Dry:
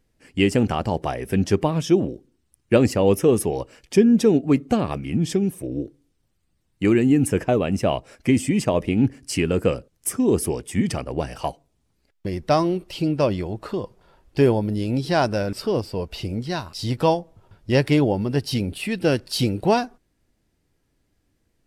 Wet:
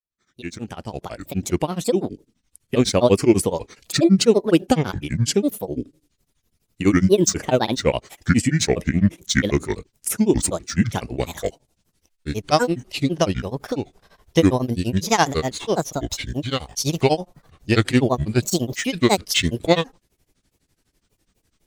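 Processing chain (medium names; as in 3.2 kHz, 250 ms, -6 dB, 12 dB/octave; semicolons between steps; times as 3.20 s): fade-in on the opening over 2.84 s; treble shelf 2.9 kHz +10 dB; granulator, grains 12 per s, spray 19 ms, pitch spread up and down by 7 st; trim +4 dB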